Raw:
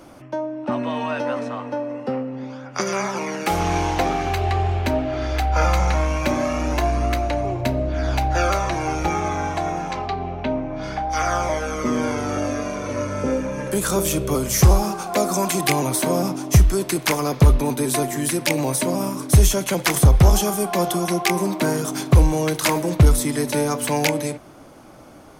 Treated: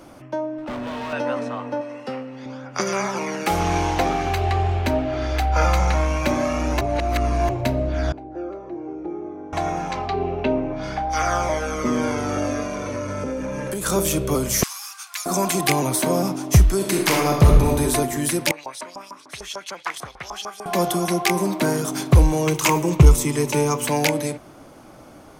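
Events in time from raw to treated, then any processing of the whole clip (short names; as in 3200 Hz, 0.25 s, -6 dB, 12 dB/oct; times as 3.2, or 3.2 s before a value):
0.58–1.13 hard clip -27.5 dBFS
1.81–2.46 tilt shelf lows -7 dB, about 1300 Hz
6.81–7.49 reverse
8.12–9.53 band-pass 350 Hz, Q 4.2
10.14–10.73 small resonant body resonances 400/2700 Hz, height 10 dB, ringing for 25 ms
12.64–13.86 compressor, threshold -23 dBFS
14.63–15.26 Bessel high-pass 2100 Hz, order 8
16.76–17.81 reverb throw, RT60 0.98 s, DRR 1 dB
18.51–20.66 LFO band-pass saw up 6.7 Hz 860–5500 Hz
22.46–23.86 ripple EQ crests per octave 0.73, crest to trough 8 dB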